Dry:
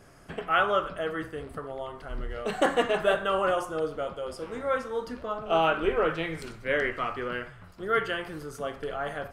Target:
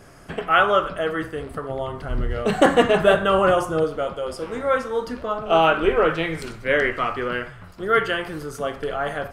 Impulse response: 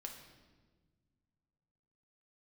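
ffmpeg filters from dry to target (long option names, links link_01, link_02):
-filter_complex "[0:a]asettb=1/sr,asplit=3[link_01][link_02][link_03];[link_01]atrim=end=1.694[link_04];[link_02]atrim=start=1.69:end=3.84,asetpts=PTS-STARTPTS,afade=type=in:duration=0.004:curve=qsin,afade=type=out:start_time=2.146:duration=0.004:curve=qsin,equalizer=frequency=110:width_type=o:width=2.4:gain=9.5[link_05];[link_03]atrim=start=3.836[link_06];[link_04][link_05]acrossfade=duration=0.004:curve1=hsin:curve2=qsin[link_07];[link_07][link_06]acrossfade=duration=0.004:curve1=qsin:curve2=hsin,volume=7dB"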